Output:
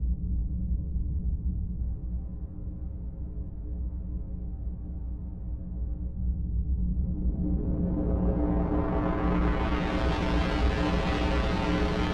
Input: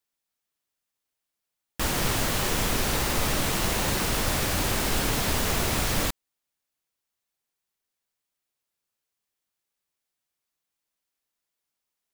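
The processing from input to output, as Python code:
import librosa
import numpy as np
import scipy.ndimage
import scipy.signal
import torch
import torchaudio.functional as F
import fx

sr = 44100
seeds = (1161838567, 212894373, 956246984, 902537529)

p1 = fx.bin_compress(x, sr, power=0.2)
p2 = fx.low_shelf(p1, sr, hz=340.0, db=-9.5)
p3 = fx.notch(p2, sr, hz=1800.0, q=29.0)
p4 = fx.over_compress(p3, sr, threshold_db=-30.0, ratio=-0.5)
p5 = p3 + F.gain(torch.from_numpy(p4), -2.5).numpy()
p6 = fx.schmitt(p5, sr, flips_db=-20.0)
p7 = fx.comb_fb(p6, sr, f0_hz=60.0, decay_s=0.35, harmonics='odd', damping=0.0, mix_pct=90)
p8 = fx.filter_sweep_lowpass(p7, sr, from_hz=110.0, to_hz=3700.0, start_s=6.67, end_s=10.04, q=0.93)
p9 = p8 + fx.echo_single(p8, sr, ms=289, db=-4.0, dry=0)
y = F.gain(torch.from_numpy(p9), 7.0).numpy()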